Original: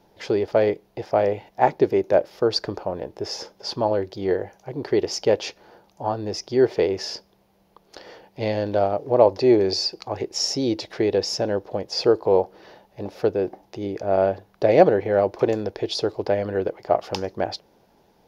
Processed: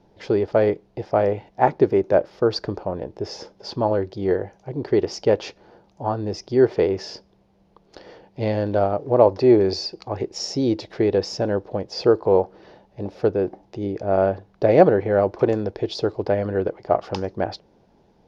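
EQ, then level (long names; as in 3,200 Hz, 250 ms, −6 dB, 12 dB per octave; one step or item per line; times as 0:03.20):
low-pass filter 6,800 Hz 12 dB per octave
low-shelf EQ 470 Hz +9 dB
dynamic equaliser 1,300 Hz, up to +6 dB, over −33 dBFS, Q 1.4
−4.0 dB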